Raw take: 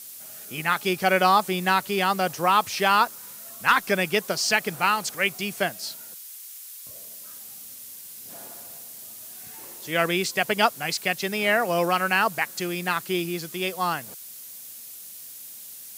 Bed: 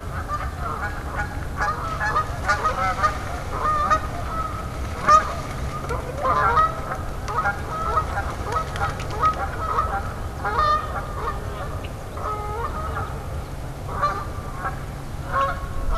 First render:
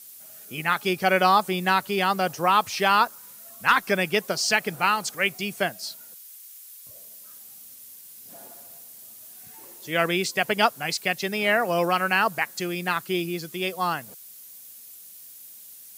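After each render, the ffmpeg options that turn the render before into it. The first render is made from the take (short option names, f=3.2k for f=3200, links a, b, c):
-af "afftdn=nr=6:nf=-42"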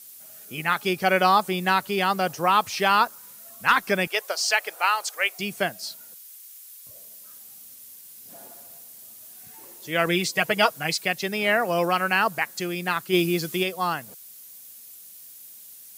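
-filter_complex "[0:a]asettb=1/sr,asplit=3[a][b][c];[a]atrim=end=4.074[d];[b]atrim=start=4.07:end=5.38,asetpts=PTS-STARTPTS,afade=t=in:d=0.004:c=qsin,afade=t=out:st=1.306:d=0.004:c=qsin,highpass=f=500:w=0.5412,highpass=f=500:w=1.3066[e];[c]atrim=start=5.376[f];[d][e]acrossfade=d=0.004:c1=hsin:c2=qsin[g];[g][f]acrossfade=d=0.004:c1=qsin:c2=hsin,asettb=1/sr,asplit=3[h][i][j];[h]atrim=end=10.064[k];[i]atrim=start=10.06:end=11.05,asetpts=PTS-STARTPTS,afade=t=in:d=0.004:c=qsin,afade=t=out:st=0.986:d=0.004:c=qsin,aecho=1:1:6.3:0.61,atrim=end_sample=43659[l];[j]atrim=start=11.046[m];[k][l]acrossfade=d=0.004:c1=hsin:c2=qsin[n];[n][m]acrossfade=d=0.004:c1=qsin:c2=hsin,asplit=3[o][p][q];[o]afade=t=out:st=13.12:d=0.02[r];[p]acontrast=53,afade=t=in:st=13.12:d=0.02,afade=t=out:st=13.62:d=0.02[s];[q]afade=t=in:st=13.62:d=0.02[t];[r][s][t]amix=inputs=3:normalize=0"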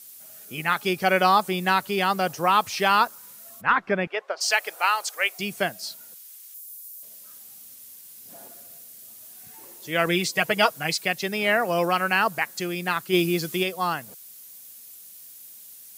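-filter_complex "[0:a]asplit=3[a][b][c];[a]afade=t=out:st=3.6:d=0.02[d];[b]lowpass=1.9k,afade=t=in:st=3.6:d=0.02,afade=t=out:st=4.4:d=0.02[e];[c]afade=t=in:st=4.4:d=0.02[f];[d][e][f]amix=inputs=3:normalize=0,asettb=1/sr,asplit=3[g][h][i];[g]atrim=end=6.544[j];[h]atrim=start=6.54:end=7.03,asetpts=PTS-STARTPTS,afade=t=in:d=0.004:c=qsin,afade=t=out:st=0.486:d=0.004:c=qsin,aderivative[k];[i]atrim=start=7.026[l];[j][k]acrossfade=d=0.004:c1=hsin:c2=qsin[m];[m][l]acrossfade=d=0.004:c1=qsin:c2=hsin,asettb=1/sr,asplit=3[n][o][p];[n]atrim=end=8.484[q];[o]atrim=start=8.48:end=9.08,asetpts=PTS-STARTPTS,afade=t=in:d=0.004:c=qsin,afade=t=out:st=0.596:d=0.004:c=qsin,equalizer=f=890:w=3.5:g=-10.5[r];[p]atrim=start=9.076[s];[q][r]acrossfade=d=0.004:c1=hsin:c2=qsin[t];[t][s]acrossfade=d=0.004:c1=qsin:c2=hsin"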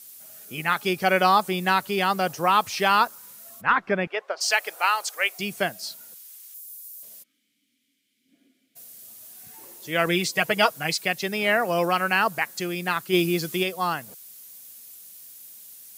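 -filter_complex "[0:a]asplit=3[a][b][c];[a]afade=t=out:st=7.22:d=0.02[d];[b]asplit=3[e][f][g];[e]bandpass=f=270:t=q:w=8,volume=0dB[h];[f]bandpass=f=2.29k:t=q:w=8,volume=-6dB[i];[g]bandpass=f=3.01k:t=q:w=8,volume=-9dB[j];[h][i][j]amix=inputs=3:normalize=0,afade=t=in:st=7.22:d=0.02,afade=t=out:st=8.75:d=0.02[k];[c]afade=t=in:st=8.75:d=0.02[l];[d][k][l]amix=inputs=3:normalize=0"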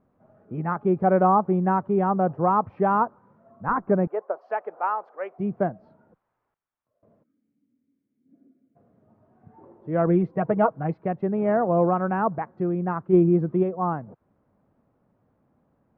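-af "lowpass=f=1.1k:w=0.5412,lowpass=f=1.1k:w=1.3066,lowshelf=f=350:g=9"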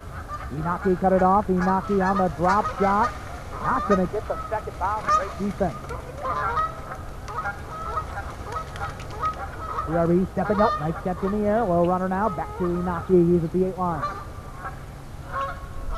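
-filter_complex "[1:a]volume=-6.5dB[a];[0:a][a]amix=inputs=2:normalize=0"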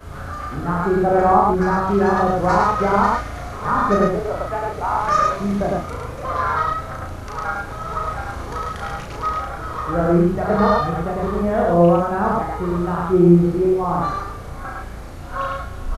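-filter_complex "[0:a]asplit=2[a][b];[b]adelay=35,volume=-2dB[c];[a][c]amix=inputs=2:normalize=0,aecho=1:1:69.97|105:0.355|0.708"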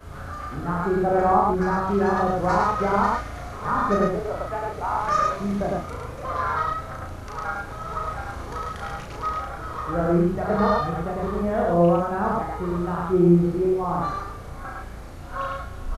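-af "volume=-4.5dB"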